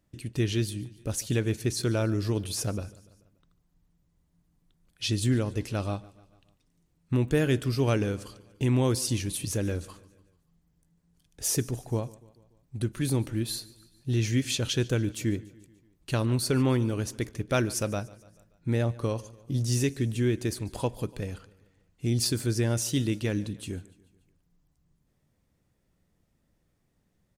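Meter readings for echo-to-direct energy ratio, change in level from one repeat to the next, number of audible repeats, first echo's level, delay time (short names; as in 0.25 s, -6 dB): -20.0 dB, -5.0 dB, 3, -21.5 dB, 0.145 s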